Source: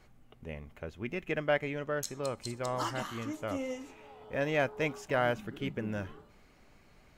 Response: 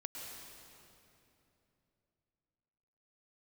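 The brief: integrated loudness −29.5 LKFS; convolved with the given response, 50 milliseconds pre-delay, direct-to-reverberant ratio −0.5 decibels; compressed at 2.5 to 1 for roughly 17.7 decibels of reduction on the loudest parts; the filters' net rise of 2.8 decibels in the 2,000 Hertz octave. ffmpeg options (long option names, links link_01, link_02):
-filter_complex "[0:a]equalizer=frequency=2000:width_type=o:gain=3.5,acompressor=threshold=-51dB:ratio=2.5,asplit=2[link_01][link_02];[1:a]atrim=start_sample=2205,adelay=50[link_03];[link_02][link_03]afir=irnorm=-1:irlink=0,volume=2dB[link_04];[link_01][link_04]amix=inputs=2:normalize=0,volume=16dB"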